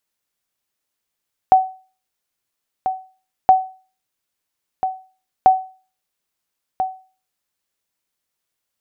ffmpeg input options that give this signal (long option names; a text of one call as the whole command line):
ffmpeg -f lavfi -i "aevalsrc='0.708*(sin(2*PI*754*mod(t,1.97))*exp(-6.91*mod(t,1.97)/0.37)+0.316*sin(2*PI*754*max(mod(t,1.97)-1.34,0))*exp(-6.91*max(mod(t,1.97)-1.34,0)/0.37))':duration=5.91:sample_rate=44100" out.wav